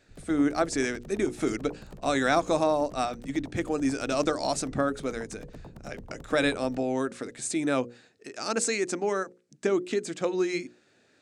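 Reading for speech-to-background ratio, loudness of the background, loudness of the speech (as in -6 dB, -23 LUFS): 19.5 dB, -48.0 LUFS, -28.5 LUFS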